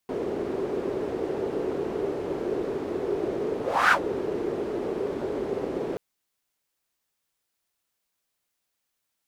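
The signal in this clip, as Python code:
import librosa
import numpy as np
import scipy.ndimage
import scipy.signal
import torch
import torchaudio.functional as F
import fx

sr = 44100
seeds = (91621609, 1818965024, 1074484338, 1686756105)

y = fx.whoosh(sr, seeds[0], length_s=5.88, peak_s=3.82, rise_s=0.31, fall_s=0.1, ends_hz=400.0, peak_hz=1500.0, q=4.3, swell_db=10.5)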